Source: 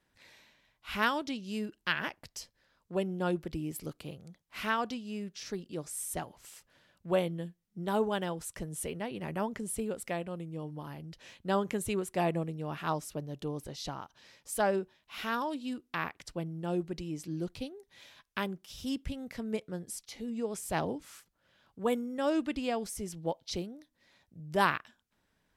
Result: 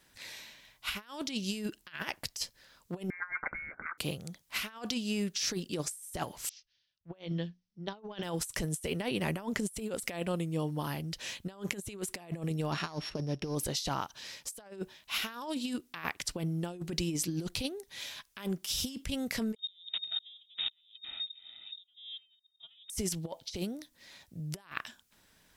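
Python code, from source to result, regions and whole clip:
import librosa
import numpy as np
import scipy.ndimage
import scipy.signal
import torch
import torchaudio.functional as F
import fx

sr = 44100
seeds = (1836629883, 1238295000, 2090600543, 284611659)

y = fx.chain(x, sr, fx.highpass_res(hz=1000.0, q=9.1),
    fx.transient(attack_db=-11, sustain_db=6),
    fx.freq_invert(carrier_hz=2500), at=(3.1, 3.98))
y = fx.chain(y, sr, fx.steep_lowpass(hz=6000.0, slope=72),
    fx.hum_notches(base_hz=60, count=4),
    fx.band_widen(depth_pct=100), at=(6.49, 8.23))
y = fx.chain(y, sr, fx.sample_sort(block=8),
    fx.lowpass(hz=3100.0, slope=12), at=(12.72, 13.55))
y = fx.chain(y, sr, fx.lower_of_two(delay_ms=1.7),
    fx.tilt_eq(slope=-3.5),
    fx.freq_invert(carrier_hz=3700), at=(19.56, 22.9))
y = fx.high_shelf(y, sr, hz=2700.0, db=11.0)
y = fx.over_compress(y, sr, threshold_db=-37.0, ratio=-0.5)
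y = y * 10.0 ** (-1.5 / 20.0)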